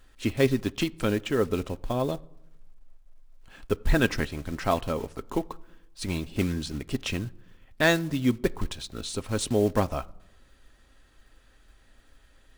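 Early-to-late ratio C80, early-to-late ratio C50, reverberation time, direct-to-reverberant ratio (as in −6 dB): 26.5 dB, 24.0 dB, non-exponential decay, 10.5 dB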